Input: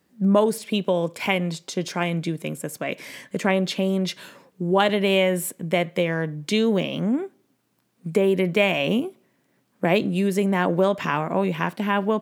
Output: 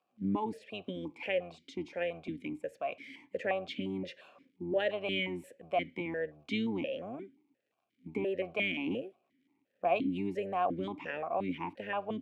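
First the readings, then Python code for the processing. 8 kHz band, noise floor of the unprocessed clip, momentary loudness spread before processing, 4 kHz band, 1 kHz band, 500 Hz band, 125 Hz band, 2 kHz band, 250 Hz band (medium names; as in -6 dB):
under -25 dB, -68 dBFS, 10 LU, -13.0 dB, -10.0 dB, -12.5 dB, -18.0 dB, -11.5 dB, -13.5 dB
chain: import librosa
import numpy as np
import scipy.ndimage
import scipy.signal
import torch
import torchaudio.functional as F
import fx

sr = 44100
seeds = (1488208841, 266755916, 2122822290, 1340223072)

y = fx.octave_divider(x, sr, octaves=1, level_db=-5.0)
y = fx.dmg_crackle(y, sr, seeds[0], per_s=170.0, level_db=-51.0)
y = fx.vowel_held(y, sr, hz=5.7)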